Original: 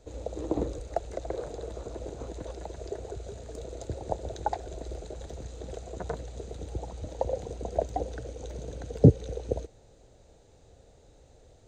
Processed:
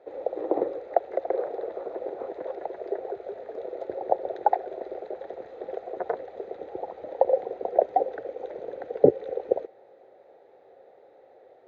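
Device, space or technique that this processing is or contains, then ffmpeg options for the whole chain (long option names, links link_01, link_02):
phone earpiece: -af "highpass=380,equalizer=frequency=380:width_type=q:width=4:gain=9,equalizer=frequency=540:width_type=q:width=4:gain=9,equalizer=frequency=770:width_type=q:width=4:gain=10,equalizer=frequency=1300:width_type=q:width=4:gain=3,equalizer=frequency=1900:width_type=q:width=4:gain=7,equalizer=frequency=2900:width_type=q:width=4:gain=-7,lowpass=frequency=3100:width=0.5412,lowpass=frequency=3100:width=1.3066"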